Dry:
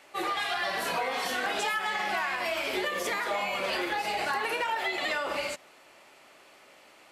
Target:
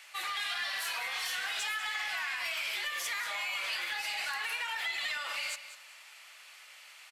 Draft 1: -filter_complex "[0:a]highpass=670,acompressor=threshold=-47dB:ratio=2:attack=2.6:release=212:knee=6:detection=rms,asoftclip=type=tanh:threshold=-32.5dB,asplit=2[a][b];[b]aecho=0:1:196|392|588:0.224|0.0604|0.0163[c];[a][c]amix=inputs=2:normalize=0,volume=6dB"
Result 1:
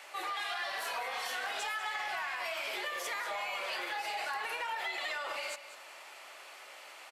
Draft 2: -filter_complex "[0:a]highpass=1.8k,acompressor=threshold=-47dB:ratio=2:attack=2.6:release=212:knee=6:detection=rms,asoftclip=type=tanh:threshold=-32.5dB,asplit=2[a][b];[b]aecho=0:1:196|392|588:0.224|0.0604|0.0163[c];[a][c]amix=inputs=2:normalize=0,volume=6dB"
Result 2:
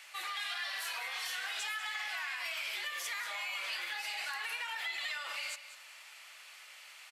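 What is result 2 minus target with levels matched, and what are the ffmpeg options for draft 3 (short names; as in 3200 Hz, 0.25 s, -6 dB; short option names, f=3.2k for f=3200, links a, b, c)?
compressor: peak gain reduction +4 dB
-filter_complex "[0:a]highpass=1.8k,acompressor=threshold=-39dB:ratio=2:attack=2.6:release=212:knee=6:detection=rms,asoftclip=type=tanh:threshold=-32.5dB,asplit=2[a][b];[b]aecho=0:1:196|392|588:0.224|0.0604|0.0163[c];[a][c]amix=inputs=2:normalize=0,volume=6dB"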